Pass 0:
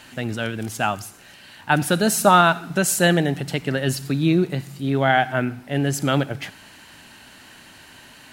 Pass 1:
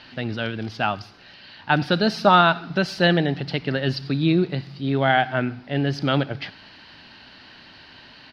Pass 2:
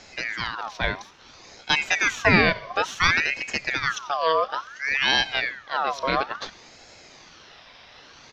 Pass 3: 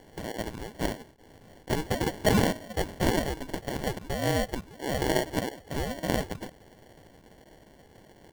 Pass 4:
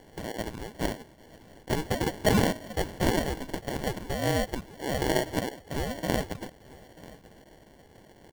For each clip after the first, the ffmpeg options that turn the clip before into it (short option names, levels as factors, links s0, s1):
-af "firequalizer=gain_entry='entry(2300,0);entry(4800,5);entry(7300,-30)':delay=0.05:min_phase=1,volume=0.891"
-af "equalizer=f=2400:t=o:w=0.33:g=5,aeval=exprs='val(0)*sin(2*PI*1600*n/s+1600*0.5/0.58*sin(2*PI*0.58*n/s))':c=same"
-af "acrusher=samples=35:mix=1:aa=0.000001,volume=0.562"
-af "aecho=1:1:938:0.0944"